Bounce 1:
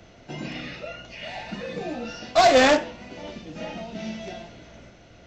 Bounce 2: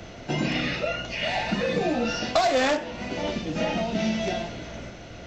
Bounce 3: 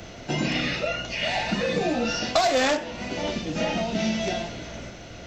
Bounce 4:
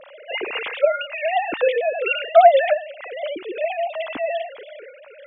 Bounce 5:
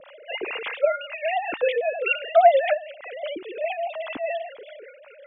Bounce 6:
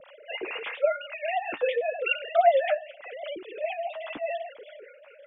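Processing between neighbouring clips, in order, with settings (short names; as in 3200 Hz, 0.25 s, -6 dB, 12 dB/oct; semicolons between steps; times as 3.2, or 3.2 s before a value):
compressor 10:1, threshold -29 dBFS, peak gain reduction 16 dB; gain +9 dB
high shelf 4800 Hz +6.5 dB
sine-wave speech; gain +5.5 dB
harmonic tremolo 5 Hz, depth 70%, crossover 590 Hz
flange 0.9 Hz, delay 1.2 ms, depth 9.2 ms, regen -41%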